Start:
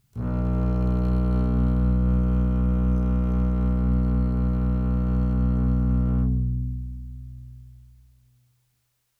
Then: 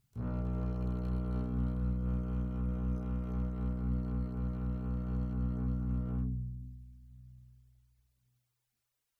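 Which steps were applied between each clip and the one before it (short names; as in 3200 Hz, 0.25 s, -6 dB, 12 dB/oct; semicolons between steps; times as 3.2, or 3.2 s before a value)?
reverb removal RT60 1.1 s; gain -8.5 dB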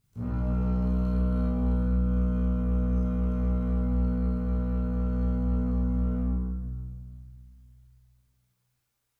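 reverb RT60 1.7 s, pre-delay 7 ms, DRR -6 dB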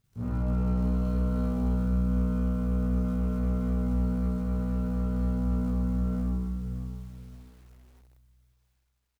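switching dead time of 0.06 ms; feedback echo 0.523 s, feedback 28%, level -14.5 dB; lo-fi delay 0.592 s, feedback 35%, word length 8-bit, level -14 dB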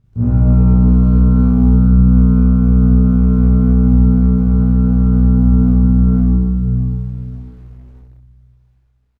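LPF 1600 Hz 6 dB/oct; low shelf 350 Hz +11.5 dB; early reflections 25 ms -5.5 dB, 64 ms -9 dB; gain +7 dB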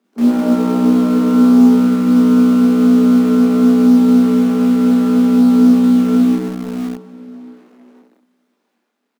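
steep high-pass 210 Hz 96 dB/oct; in parallel at -9.5 dB: bit-crush 5-bit; on the sum: gain +6 dB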